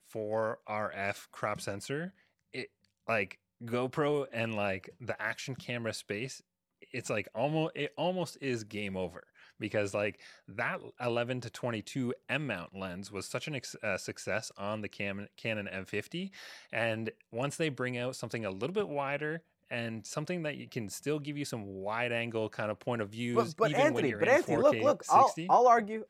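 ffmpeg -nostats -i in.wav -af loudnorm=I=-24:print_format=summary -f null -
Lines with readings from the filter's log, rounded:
Input Integrated:    -32.0 LUFS
Input True Peak:     -11.2 dBTP
Input LRA:             9.9 LU
Input Threshold:     -42.3 LUFS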